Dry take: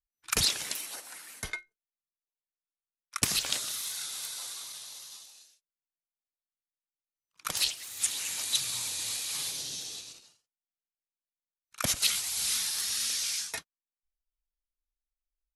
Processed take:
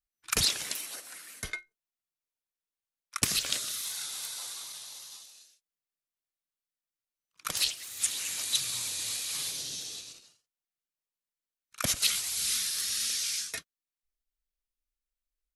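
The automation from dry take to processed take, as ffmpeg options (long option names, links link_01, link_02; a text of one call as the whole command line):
ffmpeg -i in.wav -af "asetnsamples=nb_out_samples=441:pad=0,asendcmd='0.93 equalizer g -9;1.57 equalizer g -1;3.24 equalizer g -10;3.85 equalizer g 1.5;5.22 equalizer g -5;12.35 equalizer g -14.5',equalizer=frequency=870:width_type=o:width=0.37:gain=-2.5" out.wav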